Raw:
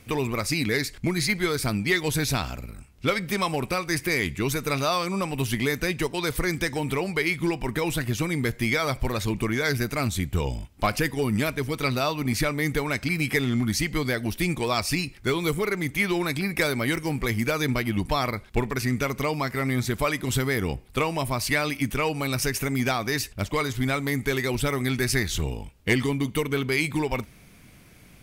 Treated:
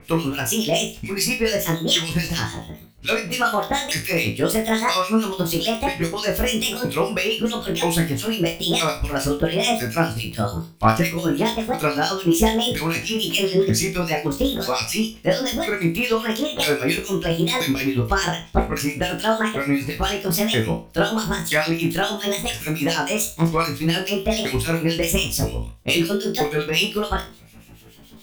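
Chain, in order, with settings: sawtooth pitch modulation +9 st, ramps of 978 ms; harmonic tremolo 7 Hz, depth 100%, crossover 2.1 kHz; flutter echo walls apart 3.1 m, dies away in 0.3 s; trim +7.5 dB

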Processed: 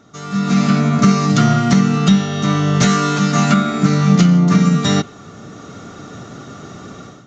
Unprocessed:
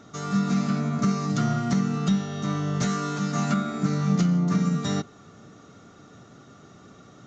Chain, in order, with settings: dynamic bell 2.8 kHz, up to +5 dB, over -47 dBFS, Q 1.1; level rider gain up to 15.5 dB

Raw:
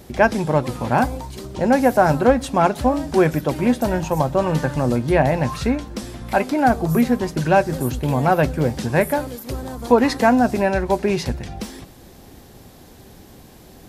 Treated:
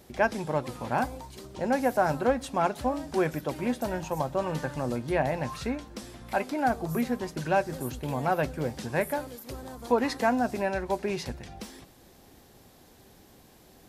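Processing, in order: bass shelf 280 Hz -5.5 dB; trim -8.5 dB

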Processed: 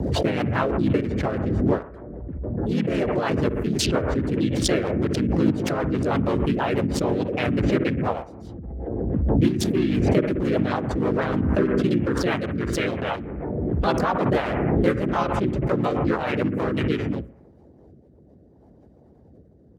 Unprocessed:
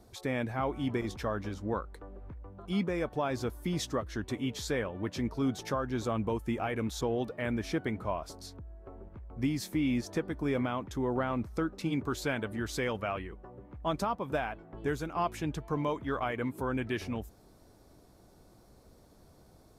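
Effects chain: local Wiener filter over 41 samples; harmony voices -4 st -1 dB, +3 st -3 dB, +4 st -3 dB; high-pass 61 Hz 24 dB/octave; harmonic-percussive split percussive +9 dB; bucket-brigade echo 60 ms, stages 1024, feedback 56%, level -17.5 dB; rotary cabinet horn 6.3 Hz, later 0.7 Hz, at 16.56 s; swell ahead of each attack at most 23 dB/s

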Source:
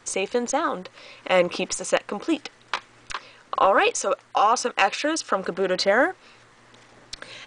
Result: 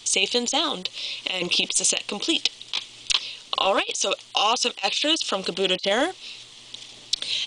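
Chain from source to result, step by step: resonant high shelf 2.3 kHz +12.5 dB, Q 3; compressor with a negative ratio -18 dBFS, ratio -0.5; band-stop 530 Hz, Q 12; trim -3 dB

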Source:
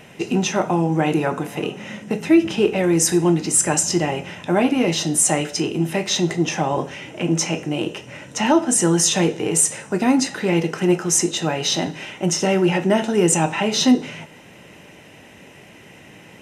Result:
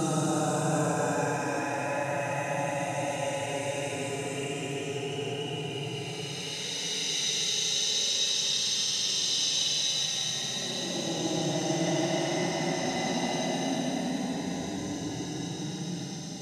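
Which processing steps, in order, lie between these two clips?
feedback echo behind a high-pass 101 ms, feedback 57%, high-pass 5.6 kHz, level -7 dB; Paulstretch 36×, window 0.05 s, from 11.46 s; trim -8.5 dB

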